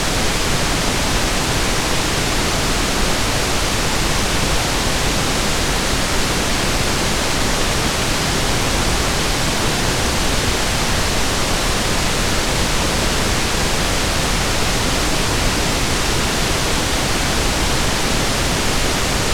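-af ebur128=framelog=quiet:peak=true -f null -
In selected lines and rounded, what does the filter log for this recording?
Integrated loudness:
  I:         -17.3 LUFS
  Threshold: -27.3 LUFS
Loudness range:
  LRA:         0.1 LU
  Threshold: -37.3 LUFS
  LRA low:   -17.3 LUFS
  LRA high:  -17.2 LUFS
True peak:
  Peak:       -3.8 dBFS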